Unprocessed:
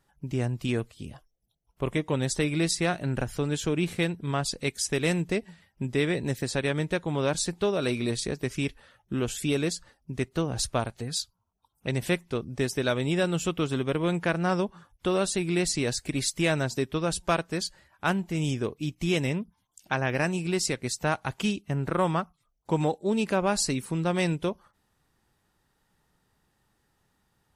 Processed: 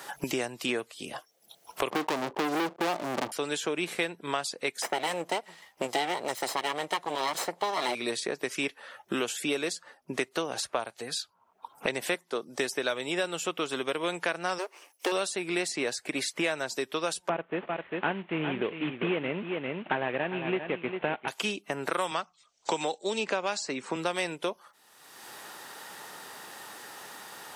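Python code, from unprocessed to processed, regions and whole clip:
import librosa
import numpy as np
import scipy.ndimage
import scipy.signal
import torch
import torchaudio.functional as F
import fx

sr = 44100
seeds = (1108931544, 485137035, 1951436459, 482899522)

y = fx.chain(x, sr, fx.cheby_ripple(hz=1200.0, ripple_db=6),
    fx.leveller(passes=5), at=(1.9, 3.32))
y = fx.chain(y, sr, fx.lower_of_two(delay_ms=0.98),
    fx.peak_eq(hz=590.0, db=7.0, octaves=1.8), at=(4.82, 7.95))
y = fx.chain(y, sr, fx.highpass(hz=170.0, slope=12),
    fx.peak_eq(hz=2500.0, db=-8.0, octaves=0.52), at=(12.14, 12.59))
y = fx.chain(y, sr, fx.lower_of_two(delay_ms=0.35),
    fx.brickwall_highpass(low_hz=260.0),
    fx.peak_eq(hz=3500.0, db=-11.0, octaves=0.26), at=(14.58, 15.12))
y = fx.chain(y, sr, fx.cvsd(bps=16000),
    fx.tilt_eq(slope=-3.5),
    fx.echo_single(ms=399, db=-10.5), at=(17.29, 21.28))
y = fx.chain(y, sr, fx.steep_lowpass(hz=8000.0, slope=48),
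    fx.band_squash(depth_pct=40), at=(22.11, 23.96))
y = scipy.signal.sosfilt(scipy.signal.butter(2, 490.0, 'highpass', fs=sr, output='sos'), y)
y = fx.band_squash(y, sr, depth_pct=100)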